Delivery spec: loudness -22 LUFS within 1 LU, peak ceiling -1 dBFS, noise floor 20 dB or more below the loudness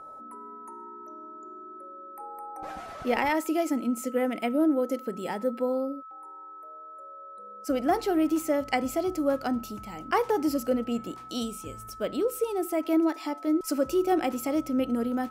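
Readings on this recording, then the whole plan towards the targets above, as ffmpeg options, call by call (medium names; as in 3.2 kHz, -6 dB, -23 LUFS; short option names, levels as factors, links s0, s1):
steady tone 1.3 kHz; tone level -42 dBFS; loudness -28.0 LUFS; peak level -12.0 dBFS; loudness target -22.0 LUFS
-> -af "bandreject=f=1300:w=30"
-af "volume=2"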